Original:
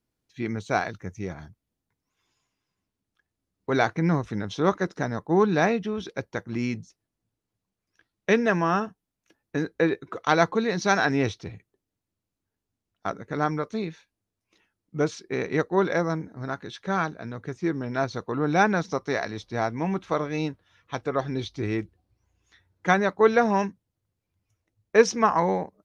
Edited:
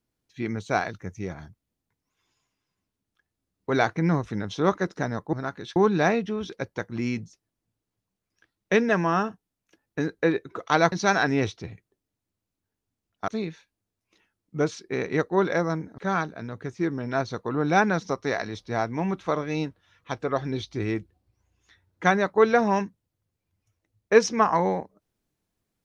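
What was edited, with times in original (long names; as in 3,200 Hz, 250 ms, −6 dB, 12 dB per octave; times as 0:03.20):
0:10.49–0:10.74: remove
0:13.10–0:13.68: remove
0:16.38–0:16.81: move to 0:05.33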